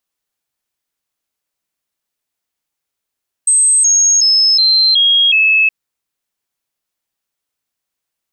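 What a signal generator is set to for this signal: stepped sine 8.25 kHz down, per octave 3, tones 6, 0.37 s, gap 0.00 s -7.5 dBFS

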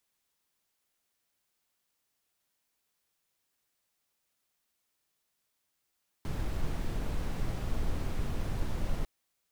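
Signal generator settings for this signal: noise brown, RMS -30.5 dBFS 2.80 s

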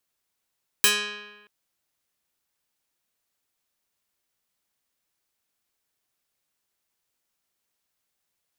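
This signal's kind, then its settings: plucked string G#3, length 0.63 s, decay 1.21 s, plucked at 0.3, medium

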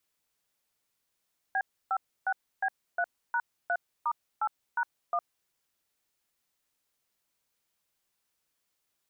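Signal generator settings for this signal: DTMF "B56B3#3*8#1", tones 60 ms, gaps 298 ms, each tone -28 dBFS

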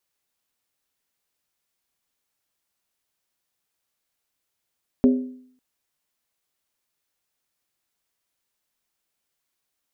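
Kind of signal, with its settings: skin hit length 0.55 s, lowest mode 254 Hz, decay 0.62 s, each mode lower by 8 dB, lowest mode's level -10.5 dB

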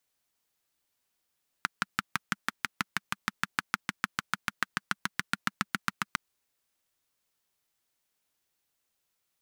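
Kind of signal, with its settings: single-cylinder engine model, changing speed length 4.51 s, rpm 700, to 900, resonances 200/1400 Hz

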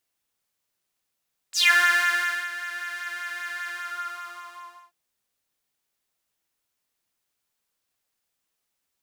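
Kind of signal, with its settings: synth patch with pulse-width modulation F4, sub -14.5 dB, filter highpass, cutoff 960 Hz, Q 8, filter envelope 3 oct, filter decay 0.17 s, filter sustain 25%, attack 51 ms, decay 0.90 s, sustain -16.5 dB, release 1.23 s, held 2.16 s, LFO 5.1 Hz, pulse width 20%, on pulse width 13%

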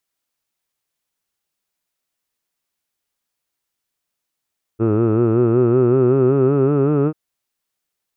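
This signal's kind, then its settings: formant vowel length 2.34 s, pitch 108 Hz, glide +5.5 st, F1 380 Hz, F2 1.3 kHz, F3 2.6 kHz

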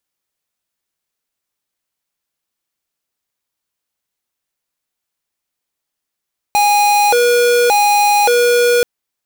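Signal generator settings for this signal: siren hi-lo 482–824 Hz 0.87 per s square -11.5 dBFS 2.28 s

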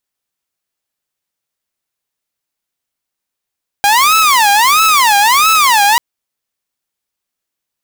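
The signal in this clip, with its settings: siren wail 805–1310 Hz 1.5 per s saw -4.5 dBFS 2.14 s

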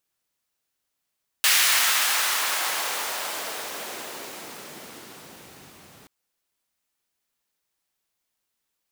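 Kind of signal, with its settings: swept filtered noise pink, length 4.63 s highpass, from 2 kHz, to 110 Hz, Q 0.96, exponential, gain ramp -36 dB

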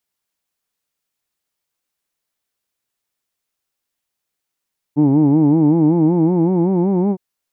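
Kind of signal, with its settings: formant-synthesis vowel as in who'd, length 2.21 s, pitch 141 Hz, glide +5.5 st, vibrato depth 1.2 st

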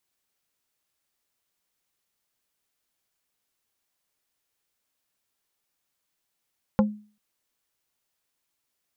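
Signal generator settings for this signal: wood hit plate, length 0.39 s, lowest mode 210 Hz, decay 0.39 s, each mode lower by 4 dB, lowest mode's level -14 dB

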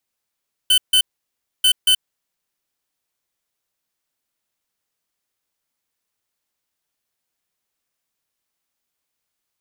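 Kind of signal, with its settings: beep pattern square 3.04 kHz, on 0.08 s, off 0.15 s, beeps 2, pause 0.63 s, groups 2, -13.5 dBFS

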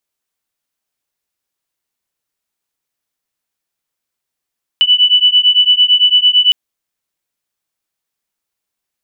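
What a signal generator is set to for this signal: beating tones 2.97 kHz, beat 8.9 Hz, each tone -10 dBFS 1.71 s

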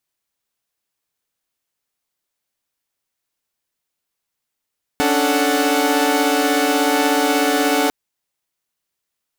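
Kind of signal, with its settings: chord C#4/D4/A4/F#5 saw, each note -18 dBFS 2.90 s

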